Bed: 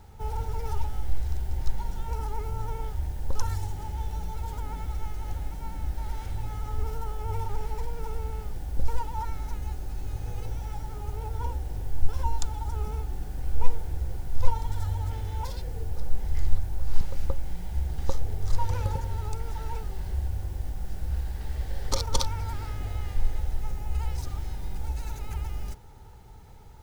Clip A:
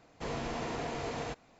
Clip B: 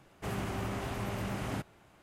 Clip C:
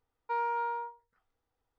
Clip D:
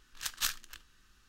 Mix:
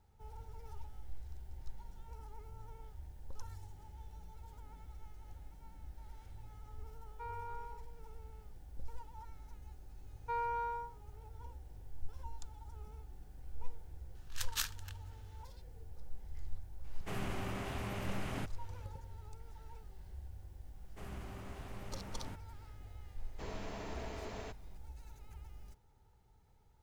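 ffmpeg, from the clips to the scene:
-filter_complex "[3:a]asplit=2[s0][s1];[2:a]asplit=2[s2][s3];[0:a]volume=0.112[s4];[s2]equalizer=f=2600:t=o:w=1.1:g=3[s5];[1:a]afreqshift=-37[s6];[s0]atrim=end=1.78,asetpts=PTS-STARTPTS,volume=0.2,afade=t=in:d=0.004:c=hsin,afade=t=out:st=1.776:d=0.004:c=hsin,adelay=304290S[s7];[s1]atrim=end=1.78,asetpts=PTS-STARTPTS,volume=0.562,afade=t=in:d=0.004:c=hsin,afade=t=out:st=1.776:d=0.004:c=hsin,adelay=9990[s8];[4:a]atrim=end=1.28,asetpts=PTS-STARTPTS,volume=0.596,afade=t=in:d=0.004:c=hsin,afade=t=out:st=1.276:d=0.004:c=hsin,adelay=14150[s9];[s5]atrim=end=2.02,asetpts=PTS-STARTPTS,volume=0.562,afade=t=in:d=0.004:c=hsin,afade=t=out:st=2.016:d=0.004:c=hsin,adelay=742644S[s10];[s3]atrim=end=2.02,asetpts=PTS-STARTPTS,volume=0.211,afade=t=in:d=0.004:c=hsin,afade=t=out:st=2.016:d=0.004:c=hsin,adelay=20740[s11];[s6]atrim=end=1.59,asetpts=PTS-STARTPTS,volume=0.376,afade=t=in:d=0.004:c=hsin,afade=t=out:st=1.586:d=0.004:c=hsin,adelay=23180[s12];[s4][s7][s8][s9][s10][s11][s12]amix=inputs=7:normalize=0"

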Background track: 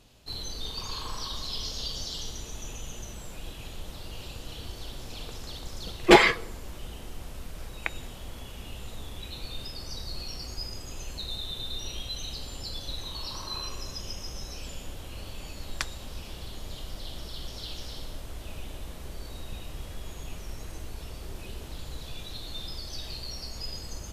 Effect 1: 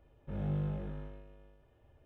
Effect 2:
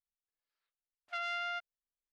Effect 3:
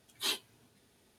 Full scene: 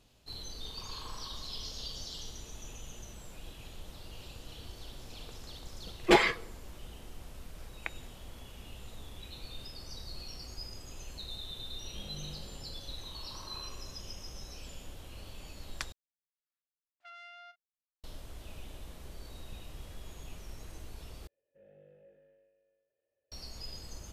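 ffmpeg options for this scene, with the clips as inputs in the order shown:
-filter_complex "[1:a]asplit=2[s0][s1];[0:a]volume=0.447[s2];[s0]lowshelf=f=140:g=-10[s3];[2:a]asplit=2[s4][s5];[s5]adelay=37,volume=0.224[s6];[s4][s6]amix=inputs=2:normalize=0[s7];[s1]asplit=3[s8][s9][s10];[s8]bandpass=f=530:t=q:w=8,volume=1[s11];[s9]bandpass=f=1840:t=q:w=8,volume=0.501[s12];[s10]bandpass=f=2480:t=q:w=8,volume=0.355[s13];[s11][s12][s13]amix=inputs=3:normalize=0[s14];[s2]asplit=3[s15][s16][s17];[s15]atrim=end=15.924[s18];[s7]atrim=end=2.12,asetpts=PTS-STARTPTS,volume=0.211[s19];[s16]atrim=start=18.036:end=21.274[s20];[s14]atrim=end=2.05,asetpts=PTS-STARTPTS,volume=0.447[s21];[s17]atrim=start=23.316[s22];[s3]atrim=end=2.05,asetpts=PTS-STARTPTS,volume=0.376,afade=t=in:d=0.004:c=hsin,afade=t=out:st=2.046:d=0.004:c=hsin,adelay=11660[s23];[s18][s19]acrossfade=d=0.004:c1=hsin:c2=hsin[s24];[s24][s20]acrossfade=d=0.004:c1=hsin:c2=hsin[s25];[s25][s21]acrossfade=d=0.004:c1=hsin:c2=hsin[s26];[s26][s22]acrossfade=d=0.004:c1=hsin:c2=hsin[s27];[s27][s23]amix=inputs=2:normalize=0"

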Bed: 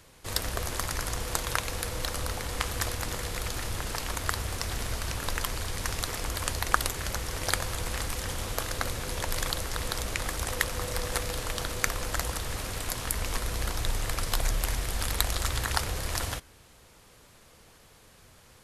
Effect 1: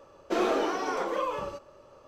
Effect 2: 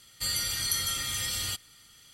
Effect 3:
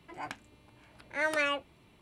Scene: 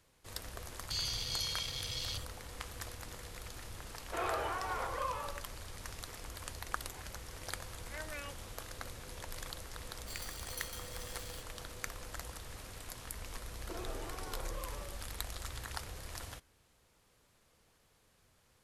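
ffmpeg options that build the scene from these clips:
-filter_complex "[2:a]asplit=2[s0][s1];[1:a]asplit=2[s2][s3];[0:a]volume=0.2[s4];[s0]afwtdn=0.0224[s5];[s2]highpass=770,lowpass=2600[s6];[s1]acrusher=bits=5:dc=4:mix=0:aa=0.000001[s7];[s3]acompressor=threshold=0.0158:ratio=2:attack=48:release=96:knee=1:detection=peak[s8];[s5]atrim=end=2.13,asetpts=PTS-STARTPTS,volume=0.668,afade=t=in:d=0.004:c=hsin,afade=t=out:st=2.126:d=0.004:c=hsin,adelay=690[s9];[s6]atrim=end=2.07,asetpts=PTS-STARTPTS,volume=0.631,afade=t=in:d=0.004:c=hsin,afade=t=out:st=2.066:d=0.004:c=hsin,adelay=3820[s10];[3:a]atrim=end=2.01,asetpts=PTS-STARTPTS,volume=0.15,afade=t=in:d=0.004:c=hsin,afade=t=out:st=2.006:d=0.004:c=hsin,adelay=6750[s11];[s7]atrim=end=2.13,asetpts=PTS-STARTPTS,volume=0.158,afade=t=in:d=0.004:c=hsin,afade=t=out:st=2.126:d=0.004:c=hsin,adelay=434826S[s12];[s8]atrim=end=2.07,asetpts=PTS-STARTPTS,volume=0.188,afade=t=in:d=0.004:c=hsin,afade=t=out:st=2.066:d=0.004:c=hsin,adelay=13390[s13];[s4][s9][s10][s11][s12][s13]amix=inputs=6:normalize=0"

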